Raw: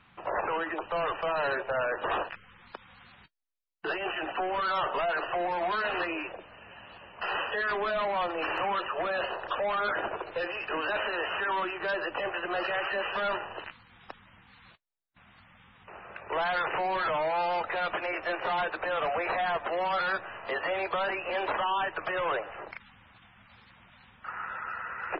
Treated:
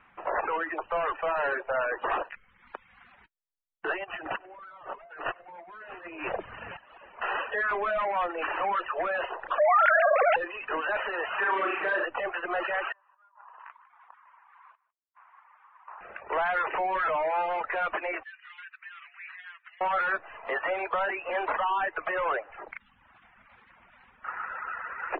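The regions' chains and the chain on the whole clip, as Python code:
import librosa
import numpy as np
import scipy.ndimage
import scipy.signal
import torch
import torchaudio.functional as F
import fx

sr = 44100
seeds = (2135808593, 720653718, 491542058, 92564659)

y = fx.chain(x, sr, fx.peak_eq(hz=120.0, db=11.5, octaves=1.4),
    fx.over_compress(threshold_db=-38.0, ratio=-0.5),
    fx.echo_split(split_hz=670.0, low_ms=138, high_ms=97, feedback_pct=52, wet_db=-14.0), at=(4.04, 6.77))
y = fx.chain(y, sr, fx.sine_speech(),
    fx.peak_eq(hz=1000.0, db=-11.5, octaves=0.24),
    fx.env_flatten(amount_pct=100), at=(9.58, 10.36))
y = fx.chain(y, sr, fx.highpass(hz=170.0, slope=12),
    fx.room_flutter(wall_m=6.2, rt60_s=0.76),
    fx.env_flatten(amount_pct=50), at=(11.38, 12.05))
y = fx.chain(y, sr, fx.ladder_bandpass(hz=1100.0, resonance_pct=70),
    fx.over_compress(threshold_db=-54.0, ratio=-1.0),
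    fx.echo_single(ms=153, db=-11.5), at=(12.92, 16.01))
y = fx.chain(y, sr, fx.bessel_highpass(hz=2800.0, order=6),
    fx.high_shelf(hz=3600.0, db=-11.5), at=(18.23, 19.81))
y = fx.dereverb_blind(y, sr, rt60_s=0.85)
y = scipy.signal.sosfilt(scipy.signal.butter(4, 2400.0, 'lowpass', fs=sr, output='sos'), y)
y = fx.peak_eq(y, sr, hz=120.0, db=-12.5, octaves=2.0)
y = F.gain(torch.from_numpy(y), 3.5).numpy()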